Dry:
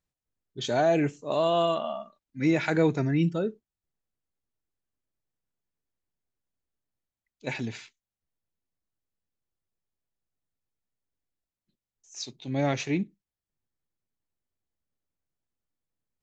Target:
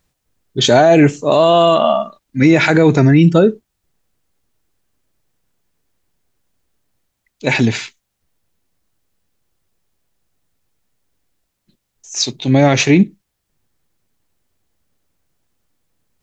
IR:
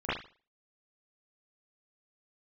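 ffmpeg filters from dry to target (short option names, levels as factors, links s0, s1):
-af "alimiter=level_in=10.6:limit=0.891:release=50:level=0:latency=1,volume=0.891"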